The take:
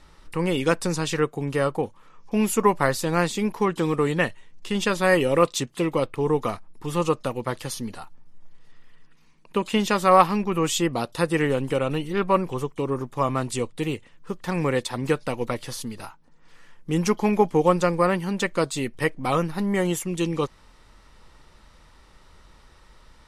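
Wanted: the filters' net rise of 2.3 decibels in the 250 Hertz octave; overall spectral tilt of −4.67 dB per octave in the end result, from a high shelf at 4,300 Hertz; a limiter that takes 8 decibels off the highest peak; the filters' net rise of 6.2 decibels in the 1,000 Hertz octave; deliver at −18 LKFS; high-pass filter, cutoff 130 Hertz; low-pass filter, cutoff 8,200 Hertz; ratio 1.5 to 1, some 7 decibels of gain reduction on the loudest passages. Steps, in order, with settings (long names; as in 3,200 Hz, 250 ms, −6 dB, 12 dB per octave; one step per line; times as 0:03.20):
high-pass filter 130 Hz
low-pass filter 8,200 Hz
parametric band 250 Hz +3.5 dB
parametric band 1,000 Hz +7 dB
high-shelf EQ 4,300 Hz +6.5 dB
downward compressor 1.5 to 1, threshold −25 dBFS
level +9 dB
brickwall limiter −4.5 dBFS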